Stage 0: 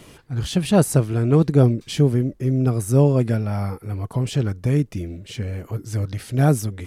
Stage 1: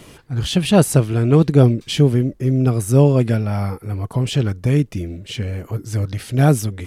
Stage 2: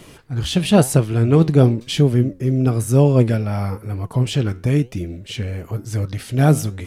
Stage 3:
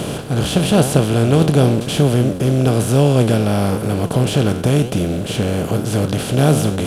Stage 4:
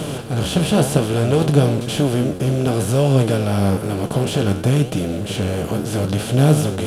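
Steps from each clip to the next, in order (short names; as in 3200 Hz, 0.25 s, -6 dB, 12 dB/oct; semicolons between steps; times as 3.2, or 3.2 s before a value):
dynamic EQ 3000 Hz, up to +5 dB, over -46 dBFS, Q 1.6; gain +3 dB
flange 0.99 Hz, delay 5.2 ms, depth 8.5 ms, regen +82%; gain +4 dB
per-bin compression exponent 0.4; gain -3 dB
flange 0.61 Hz, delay 6.2 ms, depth 8.2 ms, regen +42%; gain +1.5 dB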